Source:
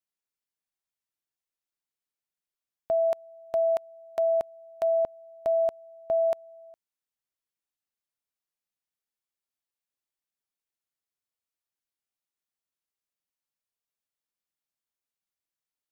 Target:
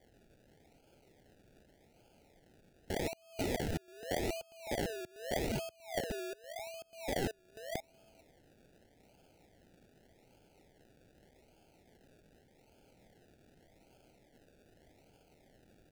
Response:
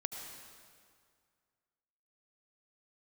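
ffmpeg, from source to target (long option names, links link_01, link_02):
-filter_complex "[0:a]firequalizer=gain_entry='entry(230,0);entry(420,2);entry(720,10);entry(2700,9)':delay=0.05:min_phase=1,asplit=2[link_01][link_02];[link_02]aecho=0:1:490|980|1470:0.211|0.0719|0.0244[link_03];[link_01][link_03]amix=inputs=2:normalize=0,acompressor=threshold=-56dB:ratio=4,highpass=82,aphaser=in_gain=1:out_gain=1:delay=2:decay=0.58:speed=0.56:type=sinusoidal,aeval=exprs='(mod(178*val(0)+1,2)-1)/178':channel_layout=same,equalizer=frequency=680:width=0.35:gain=-8.5,acrusher=samples=33:mix=1:aa=0.000001:lfo=1:lforange=19.8:lforate=0.84,asuperstop=centerf=1100:order=4:qfactor=1.8,volume=17.5dB"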